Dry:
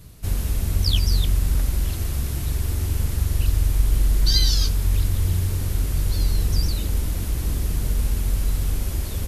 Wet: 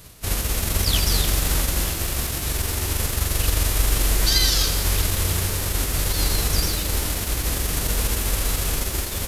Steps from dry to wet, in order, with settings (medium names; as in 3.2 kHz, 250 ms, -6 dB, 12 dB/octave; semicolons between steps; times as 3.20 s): formants flattened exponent 0.6; bit-crushed delay 83 ms, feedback 80%, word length 6-bit, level -11 dB; trim -1.5 dB